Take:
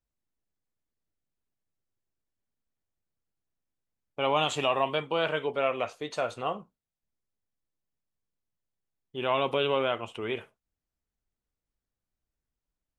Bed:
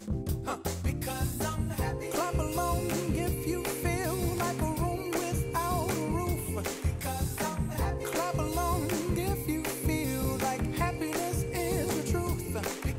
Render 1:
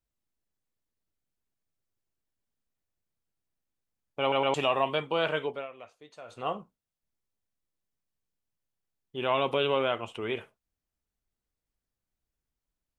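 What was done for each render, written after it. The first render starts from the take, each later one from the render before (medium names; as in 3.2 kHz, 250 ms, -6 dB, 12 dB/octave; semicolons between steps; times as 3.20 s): 4.21 s: stutter in place 0.11 s, 3 plays; 5.42–6.50 s: dip -16.5 dB, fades 0.25 s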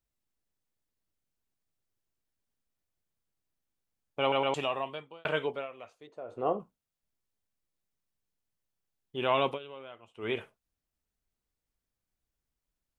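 4.20–5.25 s: fade out; 6.07–6.60 s: FFT filter 180 Hz 0 dB, 380 Hz +9 dB, 3.9 kHz -16 dB; 9.47–10.28 s: dip -19 dB, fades 0.12 s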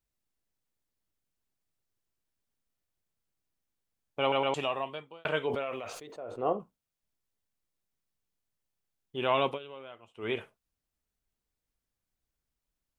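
5.47–6.53 s: decay stretcher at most 31 dB/s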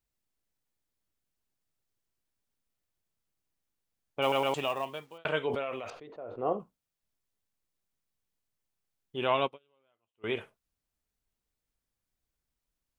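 4.22–5.18 s: companded quantiser 6-bit; 5.90–6.52 s: distance through air 330 m; 9.34–10.24 s: upward expansion 2.5:1, over -43 dBFS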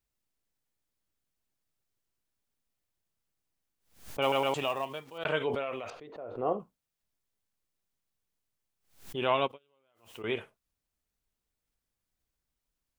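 swell ahead of each attack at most 130 dB/s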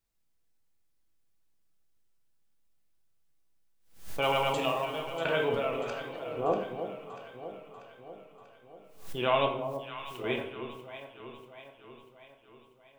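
echo whose repeats swap between lows and highs 320 ms, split 900 Hz, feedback 74%, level -8.5 dB; simulated room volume 180 m³, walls mixed, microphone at 0.69 m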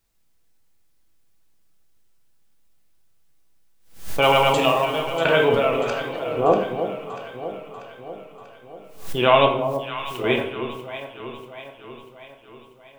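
trim +11 dB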